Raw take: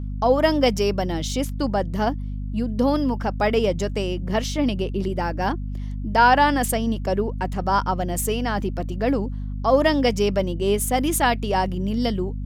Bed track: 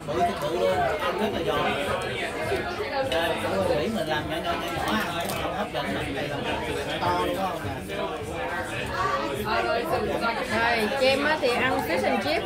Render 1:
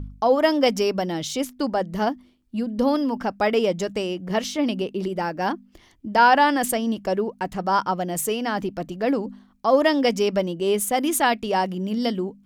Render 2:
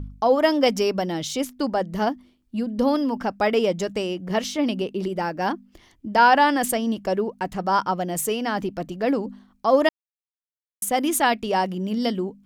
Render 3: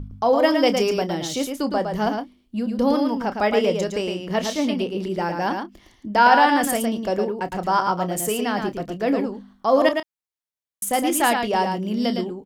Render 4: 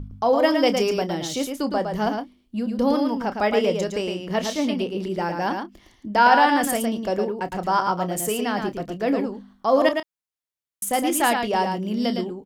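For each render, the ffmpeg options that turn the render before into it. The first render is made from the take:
-af "bandreject=f=50:t=h:w=4,bandreject=f=100:t=h:w=4,bandreject=f=150:t=h:w=4,bandreject=f=200:t=h:w=4,bandreject=f=250:t=h:w=4"
-filter_complex "[0:a]asplit=3[s0][s1][s2];[s0]atrim=end=9.89,asetpts=PTS-STARTPTS,afade=t=out:st=9.886:d=0.004:c=hsin[s3];[s1]atrim=start=9.89:end=10.82,asetpts=PTS-STARTPTS,volume=0[s4];[s2]atrim=start=10.82,asetpts=PTS-STARTPTS,afade=t=in:d=0.004:c=hsin[s5];[s3][s4][s5]concat=n=3:v=0:a=1"
-filter_complex "[0:a]asplit=2[s0][s1];[s1]adelay=29,volume=0.237[s2];[s0][s2]amix=inputs=2:normalize=0,aecho=1:1:111:0.531"
-af "volume=0.891"

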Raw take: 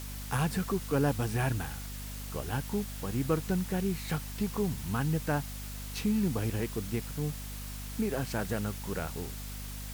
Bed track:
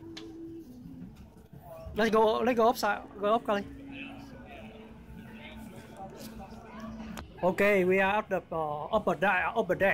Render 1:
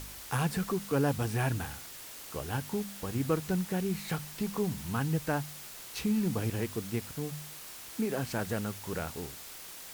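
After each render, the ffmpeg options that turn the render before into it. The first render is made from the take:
-af "bandreject=f=50:t=h:w=4,bandreject=f=100:t=h:w=4,bandreject=f=150:t=h:w=4,bandreject=f=200:t=h:w=4,bandreject=f=250:t=h:w=4"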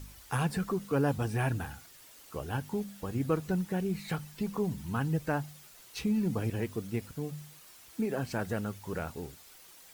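-af "afftdn=nr=10:nf=-46"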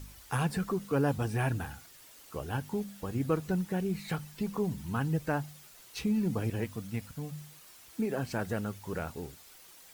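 -filter_complex "[0:a]asettb=1/sr,asplit=3[s0][s1][s2];[s0]atrim=end=6.644[s3];[s1]atrim=start=6.64:end=7.36,asetpts=PTS-STARTPTS,afade=t=in:d=0.004:c=qsin,afade=t=out:st=0.716:d=0.004:c=qsin,equalizer=f=380:w=3.4:g=-15[s4];[s2]atrim=start=7.356[s5];[s3][s4]acrossfade=d=0.004:c1=hsin:c2=qsin[s6];[s6][s5]acrossfade=d=0.004:c1=qsin:c2=hsin"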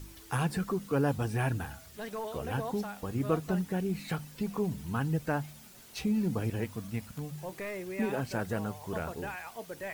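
-filter_complex "[1:a]volume=0.2[s0];[0:a][s0]amix=inputs=2:normalize=0"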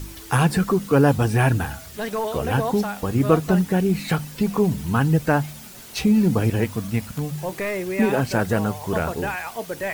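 -af "volume=3.98"

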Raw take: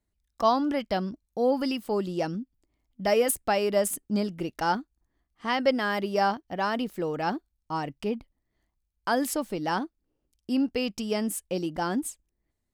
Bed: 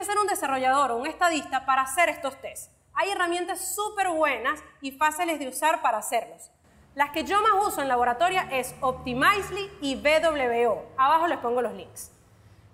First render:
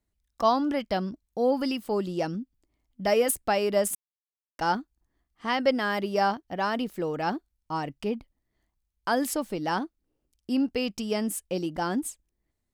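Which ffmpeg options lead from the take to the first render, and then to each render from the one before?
-filter_complex "[0:a]asplit=3[s0][s1][s2];[s0]atrim=end=3.95,asetpts=PTS-STARTPTS,afade=t=out:st=3.946:d=0.004:c=hsin[s3];[s1]atrim=start=3.95:end=4.59,asetpts=PTS-STARTPTS,volume=0[s4];[s2]atrim=start=4.59,asetpts=PTS-STARTPTS,afade=t=in:d=0.004:c=hsin[s5];[s3][s4][s5]concat=n=3:v=0:a=1"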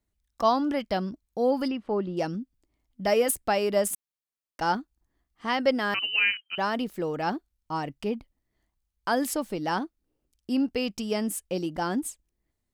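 -filter_complex "[0:a]asplit=3[s0][s1][s2];[s0]afade=t=out:st=1.67:d=0.02[s3];[s1]lowpass=2100,afade=t=in:st=1.67:d=0.02,afade=t=out:st=2.16:d=0.02[s4];[s2]afade=t=in:st=2.16:d=0.02[s5];[s3][s4][s5]amix=inputs=3:normalize=0,asettb=1/sr,asplit=3[s6][s7][s8];[s6]atrim=end=5.944[s9];[s7]atrim=start=5.94:end=6.58,asetpts=PTS-STARTPTS,afade=t=in:d=0.004:c=qsin,afade=t=out:st=0.636:d=0.004:c=qsin,lowpass=f=2700:t=q:w=0.5098,lowpass=f=2700:t=q:w=0.6013,lowpass=f=2700:t=q:w=0.9,lowpass=f=2700:t=q:w=2.563,afreqshift=-3200[s10];[s8]atrim=start=6.576[s11];[s9][s10]acrossfade=d=0.004:c1=hsin:c2=qsin[s12];[s12][s11]acrossfade=d=0.004:c1=qsin:c2=hsin"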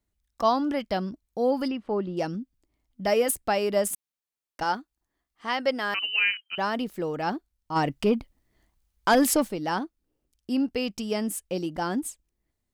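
-filter_complex "[0:a]asettb=1/sr,asplit=3[s0][s1][s2];[s0]atrim=end=4.634[s3];[s1]atrim=start=4.63:end=6.51,asetpts=PTS-STARTPTS,afade=t=in:d=0.004:c=qsin,afade=t=out:st=1.876:d=0.004:c=qsin,lowshelf=f=260:g=-10.5[s4];[s2]atrim=start=6.506[s5];[s3][s4]acrossfade=d=0.004:c1=hsin:c2=qsin[s6];[s6][s5]acrossfade=d=0.004:c1=qsin:c2=hsin,asplit=3[s7][s8][s9];[s7]afade=t=out:st=7.75:d=0.02[s10];[s8]aeval=exprs='0.211*sin(PI/2*1.58*val(0)/0.211)':c=same,afade=t=in:st=7.75:d=0.02,afade=t=out:st=9.47:d=0.02[s11];[s9]afade=t=in:st=9.47:d=0.02[s12];[s10][s11][s12]amix=inputs=3:normalize=0"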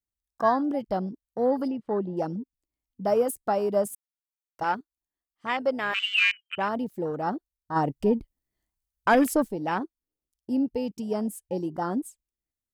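-af "afwtdn=0.0282,highshelf=f=5400:g=10.5"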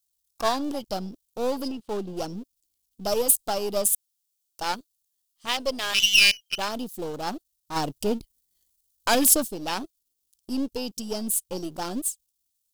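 -af "aeval=exprs='if(lt(val(0),0),0.447*val(0),val(0))':c=same,aexciter=amount=5.9:drive=6.3:freq=2900"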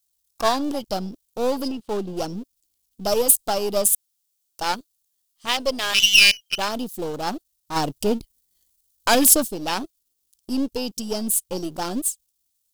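-af "volume=1.58,alimiter=limit=0.891:level=0:latency=1"

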